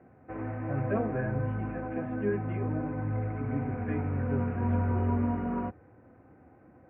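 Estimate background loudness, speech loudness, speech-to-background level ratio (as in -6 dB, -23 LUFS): -33.0 LUFS, -37.5 LUFS, -4.5 dB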